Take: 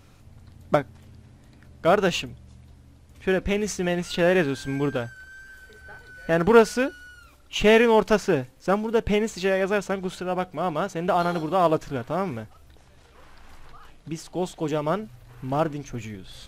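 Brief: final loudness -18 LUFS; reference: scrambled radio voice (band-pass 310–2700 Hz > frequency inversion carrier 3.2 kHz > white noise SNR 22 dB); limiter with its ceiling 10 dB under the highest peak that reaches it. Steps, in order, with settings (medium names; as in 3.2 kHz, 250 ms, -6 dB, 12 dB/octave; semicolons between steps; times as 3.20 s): peak limiter -12.5 dBFS; band-pass 310–2700 Hz; frequency inversion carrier 3.2 kHz; white noise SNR 22 dB; trim +6 dB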